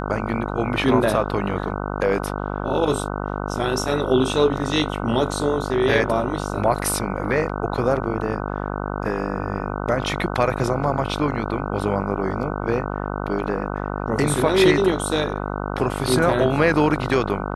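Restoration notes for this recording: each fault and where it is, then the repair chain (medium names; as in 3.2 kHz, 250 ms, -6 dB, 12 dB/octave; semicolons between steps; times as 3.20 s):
buzz 50 Hz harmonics 30 -27 dBFS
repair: de-hum 50 Hz, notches 30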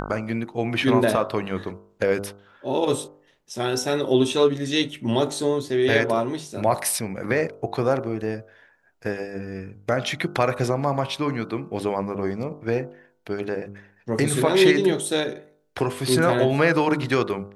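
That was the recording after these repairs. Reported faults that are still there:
nothing left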